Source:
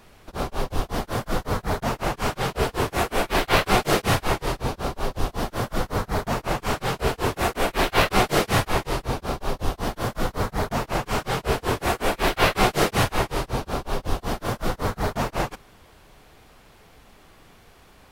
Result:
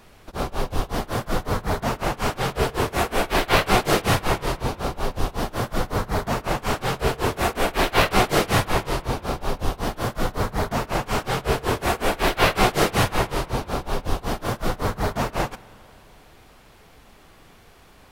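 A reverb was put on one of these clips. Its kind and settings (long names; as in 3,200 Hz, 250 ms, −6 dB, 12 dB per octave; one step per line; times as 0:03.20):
spring reverb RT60 2.9 s, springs 44 ms, chirp 65 ms, DRR 19.5 dB
level +1 dB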